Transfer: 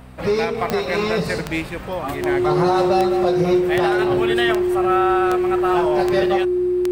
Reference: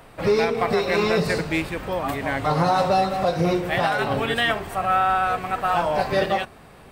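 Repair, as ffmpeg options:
-af "adeclick=t=4,bandreject=f=63.1:t=h:w=4,bandreject=f=126.2:t=h:w=4,bandreject=f=189.3:t=h:w=4,bandreject=f=252.4:t=h:w=4,bandreject=f=360:w=30"

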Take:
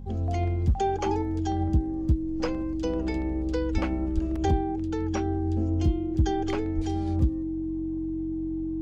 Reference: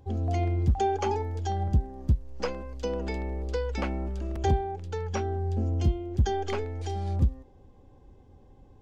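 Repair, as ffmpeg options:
-filter_complex "[0:a]bandreject=f=45.8:t=h:w=4,bandreject=f=91.6:t=h:w=4,bandreject=f=137.4:t=h:w=4,bandreject=f=183.2:t=h:w=4,bandreject=f=229:t=h:w=4,bandreject=f=320:w=30,asplit=3[a][b][c];[a]afade=t=out:st=3.73:d=0.02[d];[b]highpass=f=140:w=0.5412,highpass=f=140:w=1.3066,afade=t=in:st=3.73:d=0.02,afade=t=out:st=3.85:d=0.02[e];[c]afade=t=in:st=3.85:d=0.02[f];[d][e][f]amix=inputs=3:normalize=0,asplit=3[g][h][i];[g]afade=t=out:st=4.14:d=0.02[j];[h]highpass=f=140:w=0.5412,highpass=f=140:w=1.3066,afade=t=in:st=4.14:d=0.02,afade=t=out:st=4.26:d=0.02[k];[i]afade=t=in:st=4.26:d=0.02[l];[j][k][l]amix=inputs=3:normalize=0,asplit=3[m][n][o];[m]afade=t=out:st=6.75:d=0.02[p];[n]highpass=f=140:w=0.5412,highpass=f=140:w=1.3066,afade=t=in:st=6.75:d=0.02,afade=t=out:st=6.87:d=0.02[q];[o]afade=t=in:st=6.87:d=0.02[r];[p][q][r]amix=inputs=3:normalize=0"

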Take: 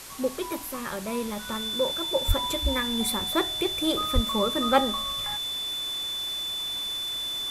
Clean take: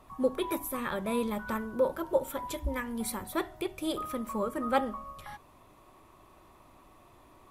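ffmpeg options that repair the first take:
-filter_complex "[0:a]bandreject=f=3.5k:w=30,asplit=3[a][b][c];[a]afade=t=out:st=2.27:d=0.02[d];[b]highpass=f=140:w=0.5412,highpass=f=140:w=1.3066,afade=t=in:st=2.27:d=0.02,afade=t=out:st=2.39:d=0.02[e];[c]afade=t=in:st=2.39:d=0.02[f];[d][e][f]amix=inputs=3:normalize=0,asplit=3[g][h][i];[g]afade=t=out:st=4.14:d=0.02[j];[h]highpass=f=140:w=0.5412,highpass=f=140:w=1.3066,afade=t=in:st=4.14:d=0.02,afade=t=out:st=4.26:d=0.02[k];[i]afade=t=in:st=4.26:d=0.02[l];[j][k][l]amix=inputs=3:normalize=0,afwtdn=0.0089,asetnsamples=n=441:p=0,asendcmd='2.25 volume volume -6dB',volume=0dB"

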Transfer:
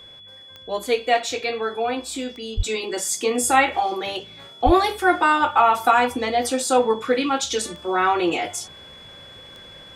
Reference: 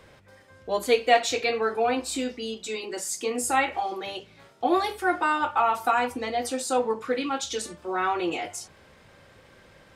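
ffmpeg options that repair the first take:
-filter_complex "[0:a]adeclick=t=4,bandreject=f=3.4k:w=30,asplit=3[a][b][c];[a]afade=t=out:st=2.56:d=0.02[d];[b]highpass=f=140:w=0.5412,highpass=f=140:w=1.3066,afade=t=in:st=2.56:d=0.02,afade=t=out:st=2.68:d=0.02[e];[c]afade=t=in:st=2.68:d=0.02[f];[d][e][f]amix=inputs=3:normalize=0,asplit=3[g][h][i];[g]afade=t=out:st=4.65:d=0.02[j];[h]highpass=f=140:w=0.5412,highpass=f=140:w=1.3066,afade=t=in:st=4.65:d=0.02,afade=t=out:st=4.77:d=0.02[k];[i]afade=t=in:st=4.77:d=0.02[l];[j][k][l]amix=inputs=3:normalize=0,asetnsamples=n=441:p=0,asendcmd='2.6 volume volume -6.5dB',volume=0dB"

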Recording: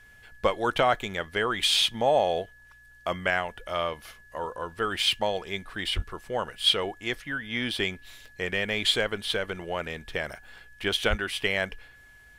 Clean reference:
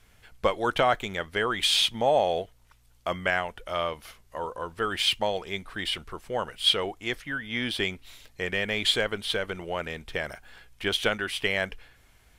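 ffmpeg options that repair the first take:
-filter_complex "[0:a]bandreject=f=1.7k:w=30,asplit=3[a][b][c];[a]afade=t=out:st=5.95:d=0.02[d];[b]highpass=f=140:w=0.5412,highpass=f=140:w=1.3066,afade=t=in:st=5.95:d=0.02,afade=t=out:st=6.07:d=0.02[e];[c]afade=t=in:st=6.07:d=0.02[f];[d][e][f]amix=inputs=3:normalize=0,asplit=3[g][h][i];[g]afade=t=out:st=11.09:d=0.02[j];[h]highpass=f=140:w=0.5412,highpass=f=140:w=1.3066,afade=t=in:st=11.09:d=0.02,afade=t=out:st=11.21:d=0.02[k];[i]afade=t=in:st=11.21:d=0.02[l];[j][k][l]amix=inputs=3:normalize=0"

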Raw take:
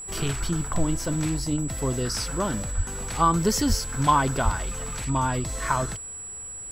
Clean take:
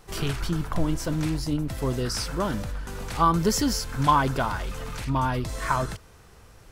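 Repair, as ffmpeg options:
-filter_complex "[0:a]bandreject=f=7.8k:w=30,asplit=3[a][b][c];[a]afade=t=out:st=2.76:d=0.02[d];[b]highpass=f=140:w=0.5412,highpass=f=140:w=1.3066,afade=t=in:st=2.76:d=0.02,afade=t=out:st=2.88:d=0.02[e];[c]afade=t=in:st=2.88:d=0.02[f];[d][e][f]amix=inputs=3:normalize=0,asplit=3[g][h][i];[g]afade=t=out:st=3.68:d=0.02[j];[h]highpass=f=140:w=0.5412,highpass=f=140:w=1.3066,afade=t=in:st=3.68:d=0.02,afade=t=out:st=3.8:d=0.02[k];[i]afade=t=in:st=3.8:d=0.02[l];[j][k][l]amix=inputs=3:normalize=0,asplit=3[m][n][o];[m]afade=t=out:st=4.44:d=0.02[p];[n]highpass=f=140:w=0.5412,highpass=f=140:w=1.3066,afade=t=in:st=4.44:d=0.02,afade=t=out:st=4.56:d=0.02[q];[o]afade=t=in:st=4.56:d=0.02[r];[p][q][r]amix=inputs=3:normalize=0"

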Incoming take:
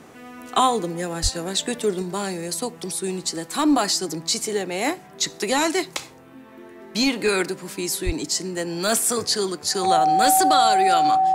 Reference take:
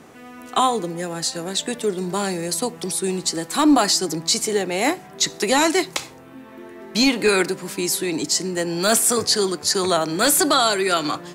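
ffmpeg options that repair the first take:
-filter_complex "[0:a]bandreject=f=760:w=30,asplit=3[a][b][c];[a]afade=t=out:st=1.22:d=0.02[d];[b]highpass=f=140:w=0.5412,highpass=f=140:w=1.3066,afade=t=in:st=1.22:d=0.02,afade=t=out:st=1.34:d=0.02[e];[c]afade=t=in:st=1.34:d=0.02[f];[d][e][f]amix=inputs=3:normalize=0,asplit=3[g][h][i];[g]afade=t=out:st=8.05:d=0.02[j];[h]highpass=f=140:w=0.5412,highpass=f=140:w=1.3066,afade=t=in:st=8.05:d=0.02,afade=t=out:st=8.17:d=0.02[k];[i]afade=t=in:st=8.17:d=0.02[l];[j][k][l]amix=inputs=3:normalize=0,asetnsamples=n=441:p=0,asendcmd='2.02 volume volume 3.5dB',volume=0dB"

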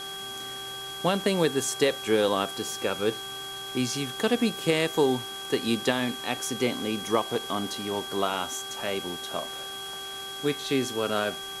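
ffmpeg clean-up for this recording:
-af "adeclick=t=4,bandreject=f=389.8:t=h:w=4,bandreject=f=779.6:t=h:w=4,bandreject=f=1.1694k:t=h:w=4,bandreject=f=1.5592k:t=h:w=4,bandreject=f=3.3k:w=30,afwtdn=0.0071"

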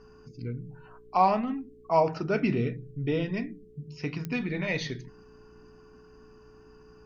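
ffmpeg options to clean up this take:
-af "adeclick=t=4,bandreject=f=58.8:t=h:w=4,bandreject=f=117.6:t=h:w=4,bandreject=f=176.4:t=h:w=4,bandreject=f=235.2:t=h:w=4,bandreject=f=294:t=h:w=4,bandreject=f=352.8:t=h:w=4,bandreject=f=430:w=30"

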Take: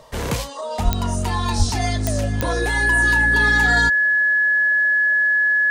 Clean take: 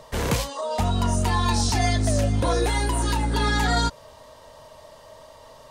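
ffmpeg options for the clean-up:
-filter_complex "[0:a]adeclick=t=4,bandreject=f=1.7k:w=30,asplit=3[a][b][c];[a]afade=t=out:st=0.84:d=0.02[d];[b]highpass=f=140:w=0.5412,highpass=f=140:w=1.3066,afade=t=in:st=0.84:d=0.02,afade=t=out:st=0.96:d=0.02[e];[c]afade=t=in:st=0.96:d=0.02[f];[d][e][f]amix=inputs=3:normalize=0,asplit=3[g][h][i];[g]afade=t=out:st=1.58:d=0.02[j];[h]highpass=f=140:w=0.5412,highpass=f=140:w=1.3066,afade=t=in:st=1.58:d=0.02,afade=t=out:st=1.7:d=0.02[k];[i]afade=t=in:st=1.7:d=0.02[l];[j][k][l]amix=inputs=3:normalize=0"

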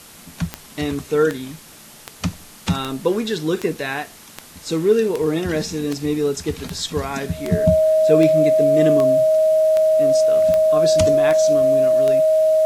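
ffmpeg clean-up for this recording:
-af "adeclick=t=4,bandreject=f=630:w=30,afwtdn=0.0079"

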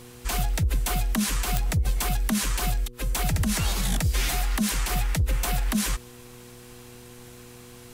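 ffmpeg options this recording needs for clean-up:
-af "adeclick=t=4,bandreject=f=121.6:t=h:w=4,bandreject=f=243.2:t=h:w=4,bandreject=f=364.8:t=h:w=4,bandreject=f=486.4:t=h:w=4"

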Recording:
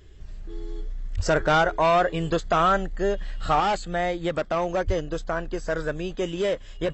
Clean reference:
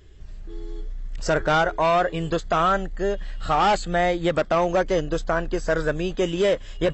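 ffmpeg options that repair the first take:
-filter_complex "[0:a]asplit=3[a][b][c];[a]afade=t=out:st=1.16:d=0.02[d];[b]highpass=f=140:w=0.5412,highpass=f=140:w=1.3066,afade=t=in:st=1.16:d=0.02,afade=t=out:st=1.28:d=0.02[e];[c]afade=t=in:st=1.28:d=0.02[f];[d][e][f]amix=inputs=3:normalize=0,asplit=3[g][h][i];[g]afade=t=out:st=4.86:d=0.02[j];[h]highpass=f=140:w=0.5412,highpass=f=140:w=1.3066,afade=t=in:st=4.86:d=0.02,afade=t=out:st=4.98:d=0.02[k];[i]afade=t=in:st=4.98:d=0.02[l];[j][k][l]amix=inputs=3:normalize=0,asetnsamples=n=441:p=0,asendcmd='3.6 volume volume 4.5dB',volume=0dB"

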